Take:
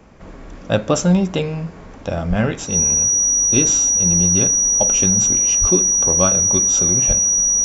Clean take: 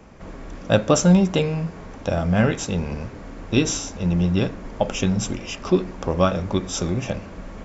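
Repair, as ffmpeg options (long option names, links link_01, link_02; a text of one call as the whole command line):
ffmpeg -i in.wav -filter_complex "[0:a]bandreject=frequency=5800:width=30,asplit=3[link_01][link_02][link_03];[link_01]afade=type=out:start_time=2.29:duration=0.02[link_04];[link_02]highpass=frequency=140:width=0.5412,highpass=frequency=140:width=1.3066,afade=type=in:start_time=2.29:duration=0.02,afade=type=out:start_time=2.41:duration=0.02[link_05];[link_03]afade=type=in:start_time=2.41:duration=0.02[link_06];[link_04][link_05][link_06]amix=inputs=3:normalize=0,asplit=3[link_07][link_08][link_09];[link_07]afade=type=out:start_time=5.6:duration=0.02[link_10];[link_08]highpass=frequency=140:width=0.5412,highpass=frequency=140:width=1.3066,afade=type=in:start_time=5.6:duration=0.02,afade=type=out:start_time=5.72:duration=0.02[link_11];[link_09]afade=type=in:start_time=5.72:duration=0.02[link_12];[link_10][link_11][link_12]amix=inputs=3:normalize=0,asplit=3[link_13][link_14][link_15];[link_13]afade=type=out:start_time=7.07:duration=0.02[link_16];[link_14]highpass=frequency=140:width=0.5412,highpass=frequency=140:width=1.3066,afade=type=in:start_time=7.07:duration=0.02,afade=type=out:start_time=7.19:duration=0.02[link_17];[link_15]afade=type=in:start_time=7.19:duration=0.02[link_18];[link_16][link_17][link_18]amix=inputs=3:normalize=0" out.wav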